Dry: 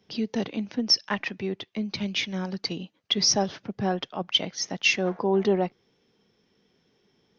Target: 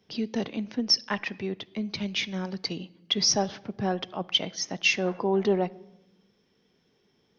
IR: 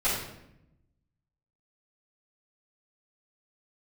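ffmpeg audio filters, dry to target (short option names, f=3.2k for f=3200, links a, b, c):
-filter_complex "[0:a]asplit=2[a][b];[1:a]atrim=start_sample=2205,asetrate=37044,aresample=44100[c];[b][c]afir=irnorm=-1:irlink=0,volume=-31dB[d];[a][d]amix=inputs=2:normalize=0,volume=-1.5dB"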